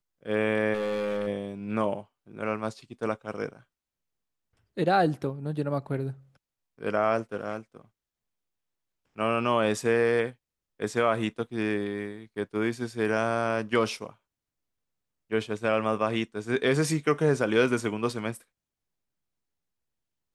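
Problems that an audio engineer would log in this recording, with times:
0:00.73–0:01.27: clipping −25.5 dBFS

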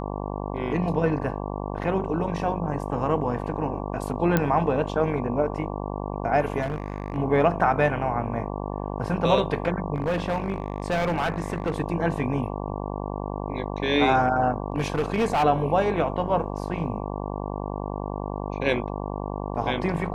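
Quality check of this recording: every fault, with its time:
mains buzz 50 Hz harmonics 23 −31 dBFS
0:04.37: click −8 dBFS
0:06.61–0:07.18: clipping −23 dBFS
0:09.94–0:11.80: clipping −20.5 dBFS
0:14.72–0:15.44: clipping −18.5 dBFS

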